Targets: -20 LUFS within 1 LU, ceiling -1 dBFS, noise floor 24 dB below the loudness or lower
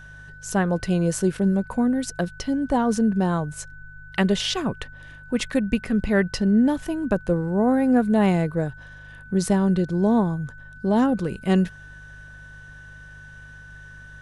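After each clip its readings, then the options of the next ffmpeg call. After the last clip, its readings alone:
hum 50 Hz; harmonics up to 150 Hz; hum level -44 dBFS; steady tone 1500 Hz; tone level -43 dBFS; loudness -22.5 LUFS; peak -7.5 dBFS; loudness target -20.0 LUFS
-> -af "bandreject=f=50:t=h:w=4,bandreject=f=100:t=h:w=4,bandreject=f=150:t=h:w=4"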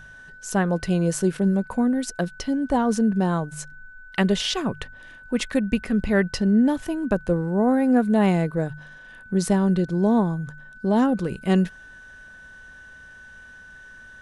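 hum none; steady tone 1500 Hz; tone level -43 dBFS
-> -af "bandreject=f=1.5k:w=30"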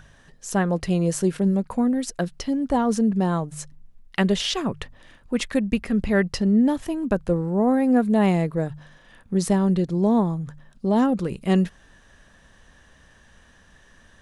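steady tone none; loudness -23.0 LUFS; peak -8.0 dBFS; loudness target -20.0 LUFS
-> -af "volume=3dB"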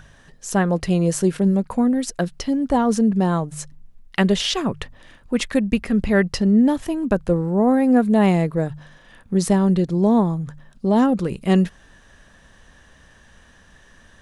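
loudness -20.0 LUFS; peak -5.0 dBFS; noise floor -51 dBFS

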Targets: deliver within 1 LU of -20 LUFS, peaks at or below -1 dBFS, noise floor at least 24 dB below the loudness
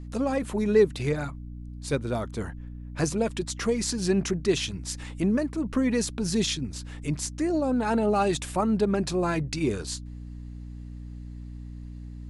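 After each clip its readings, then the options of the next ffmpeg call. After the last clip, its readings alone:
hum 60 Hz; harmonics up to 300 Hz; hum level -37 dBFS; loudness -27.0 LUFS; peak -9.0 dBFS; loudness target -20.0 LUFS
-> -af "bandreject=f=60:t=h:w=6,bandreject=f=120:t=h:w=6,bandreject=f=180:t=h:w=6,bandreject=f=240:t=h:w=6,bandreject=f=300:t=h:w=6"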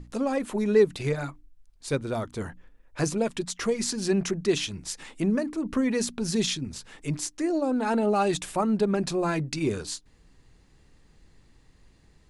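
hum none; loudness -27.5 LUFS; peak -9.5 dBFS; loudness target -20.0 LUFS
-> -af "volume=7.5dB"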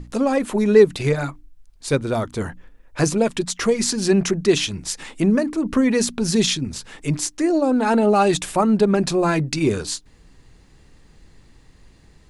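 loudness -20.0 LUFS; peak -2.0 dBFS; noise floor -52 dBFS

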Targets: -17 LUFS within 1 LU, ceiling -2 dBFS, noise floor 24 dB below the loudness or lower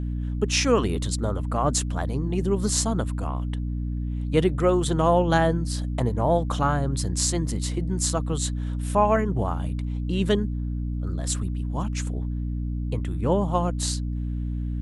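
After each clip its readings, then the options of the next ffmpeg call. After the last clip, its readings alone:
hum 60 Hz; harmonics up to 300 Hz; hum level -25 dBFS; loudness -25.5 LUFS; peak -6.5 dBFS; loudness target -17.0 LUFS
-> -af "bandreject=f=60:t=h:w=6,bandreject=f=120:t=h:w=6,bandreject=f=180:t=h:w=6,bandreject=f=240:t=h:w=6,bandreject=f=300:t=h:w=6"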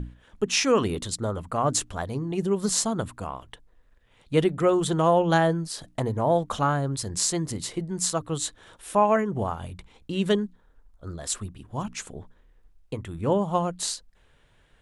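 hum none; loudness -26.0 LUFS; peak -7.5 dBFS; loudness target -17.0 LUFS
-> -af "volume=9dB,alimiter=limit=-2dB:level=0:latency=1"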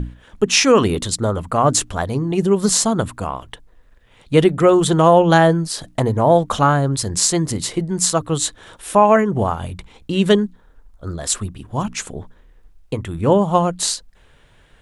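loudness -17.5 LUFS; peak -2.0 dBFS; noise floor -51 dBFS

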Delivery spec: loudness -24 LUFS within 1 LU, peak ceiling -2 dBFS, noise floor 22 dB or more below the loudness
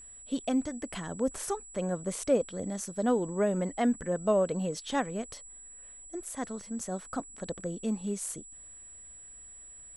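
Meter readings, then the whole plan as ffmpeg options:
steady tone 7800 Hz; tone level -47 dBFS; loudness -32.5 LUFS; peak -14.5 dBFS; loudness target -24.0 LUFS
-> -af "bandreject=f=7.8k:w=30"
-af "volume=8.5dB"

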